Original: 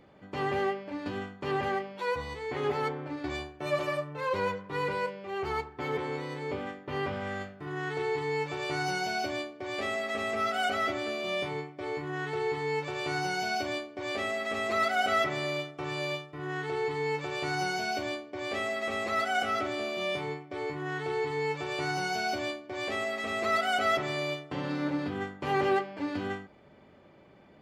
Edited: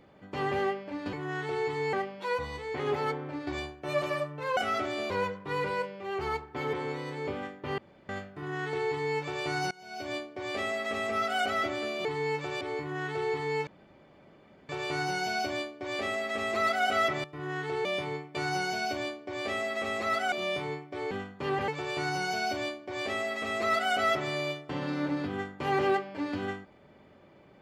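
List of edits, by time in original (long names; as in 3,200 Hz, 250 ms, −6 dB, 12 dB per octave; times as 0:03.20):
0:01.13–0:01.70: swap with 0:20.70–0:21.50
0:07.02–0:07.33: fill with room tone
0:08.95–0:09.39: fade in quadratic, from −23 dB
0:11.29–0:11.79: swap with 0:16.85–0:17.41
0:12.85: splice in room tone 1.02 s
0:15.40–0:16.24: remove
0:19.38–0:19.91: move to 0:04.34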